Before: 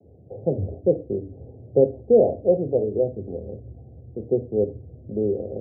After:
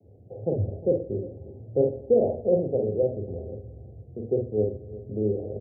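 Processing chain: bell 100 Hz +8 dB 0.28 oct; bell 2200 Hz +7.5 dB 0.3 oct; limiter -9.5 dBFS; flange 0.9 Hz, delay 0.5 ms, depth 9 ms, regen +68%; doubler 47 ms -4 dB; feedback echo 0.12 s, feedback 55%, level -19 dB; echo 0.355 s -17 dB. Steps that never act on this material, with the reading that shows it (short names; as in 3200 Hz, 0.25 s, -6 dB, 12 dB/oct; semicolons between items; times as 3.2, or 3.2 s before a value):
bell 2200 Hz: input band ends at 760 Hz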